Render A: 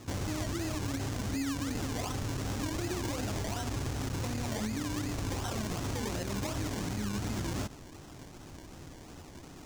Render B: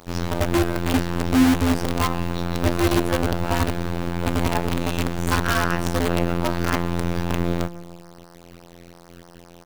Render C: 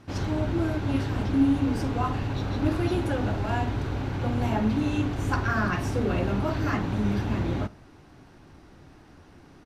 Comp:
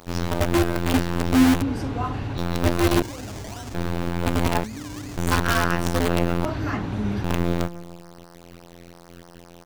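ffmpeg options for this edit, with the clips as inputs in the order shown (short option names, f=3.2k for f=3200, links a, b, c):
-filter_complex "[2:a]asplit=2[a][b];[0:a]asplit=2[c][d];[1:a]asplit=5[e][f][g][h][i];[e]atrim=end=1.622[j];[a]atrim=start=1.618:end=2.382[k];[f]atrim=start=2.378:end=3.022[l];[c]atrim=start=3.018:end=3.742[m];[g]atrim=start=3.738:end=4.642[n];[d]atrim=start=4.638:end=5.172[o];[h]atrim=start=5.168:end=6.452[p];[b]atrim=start=6.448:end=7.242[q];[i]atrim=start=7.238[r];[j][k]acrossfade=d=0.004:c1=hsin:c2=hsin[s];[s][l]acrossfade=d=0.004:c1=hsin:c2=hsin[t];[t][m]acrossfade=d=0.004:c1=hsin:c2=hsin[u];[u][n]acrossfade=d=0.004:c1=hsin:c2=hsin[v];[v][o]acrossfade=d=0.004:c1=hsin:c2=hsin[w];[w][p]acrossfade=d=0.004:c1=hsin:c2=hsin[x];[x][q]acrossfade=d=0.004:c1=hsin:c2=hsin[y];[y][r]acrossfade=d=0.004:c1=hsin:c2=hsin"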